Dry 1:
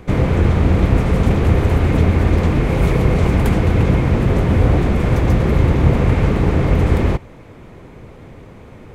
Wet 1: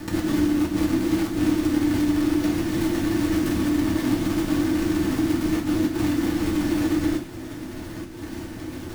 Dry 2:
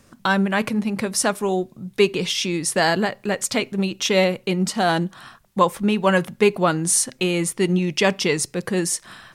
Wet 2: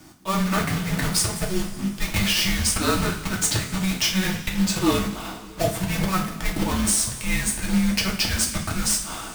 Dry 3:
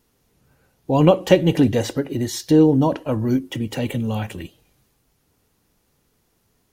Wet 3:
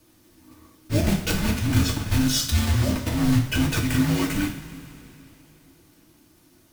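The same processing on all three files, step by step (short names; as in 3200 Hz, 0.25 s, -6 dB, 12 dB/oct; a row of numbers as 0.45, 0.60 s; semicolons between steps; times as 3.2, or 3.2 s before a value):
block floating point 3-bit; frequency shift -380 Hz; auto swell 0.165 s; compressor 16:1, threshold -24 dBFS; two-slope reverb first 0.39 s, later 3.3 s, from -18 dB, DRR -1.5 dB; match loudness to -23 LUFS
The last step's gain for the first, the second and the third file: -0.5, +3.5, +4.0 dB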